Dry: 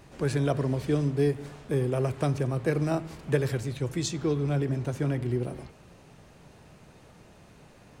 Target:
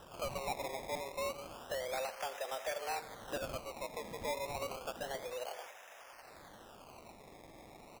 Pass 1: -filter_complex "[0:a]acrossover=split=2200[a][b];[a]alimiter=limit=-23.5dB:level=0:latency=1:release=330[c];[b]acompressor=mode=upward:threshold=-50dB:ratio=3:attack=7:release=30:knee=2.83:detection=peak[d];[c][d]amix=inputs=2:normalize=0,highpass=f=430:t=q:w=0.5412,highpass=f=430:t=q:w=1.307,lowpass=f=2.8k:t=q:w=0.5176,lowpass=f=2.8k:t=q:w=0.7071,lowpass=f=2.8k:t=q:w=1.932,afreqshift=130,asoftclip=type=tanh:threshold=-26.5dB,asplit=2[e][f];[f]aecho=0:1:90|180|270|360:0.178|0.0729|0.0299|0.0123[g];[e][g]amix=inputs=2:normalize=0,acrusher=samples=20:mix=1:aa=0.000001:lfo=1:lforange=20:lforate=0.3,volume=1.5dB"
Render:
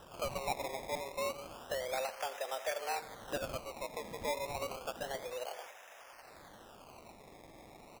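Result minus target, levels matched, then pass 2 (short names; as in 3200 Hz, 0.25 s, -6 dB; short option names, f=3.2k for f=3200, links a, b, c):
soft clip: distortion -9 dB
-filter_complex "[0:a]acrossover=split=2200[a][b];[a]alimiter=limit=-23.5dB:level=0:latency=1:release=330[c];[b]acompressor=mode=upward:threshold=-50dB:ratio=3:attack=7:release=30:knee=2.83:detection=peak[d];[c][d]amix=inputs=2:normalize=0,highpass=f=430:t=q:w=0.5412,highpass=f=430:t=q:w=1.307,lowpass=f=2.8k:t=q:w=0.5176,lowpass=f=2.8k:t=q:w=0.7071,lowpass=f=2.8k:t=q:w=1.932,afreqshift=130,asoftclip=type=tanh:threshold=-33dB,asplit=2[e][f];[f]aecho=0:1:90|180|270|360:0.178|0.0729|0.0299|0.0123[g];[e][g]amix=inputs=2:normalize=0,acrusher=samples=20:mix=1:aa=0.000001:lfo=1:lforange=20:lforate=0.3,volume=1.5dB"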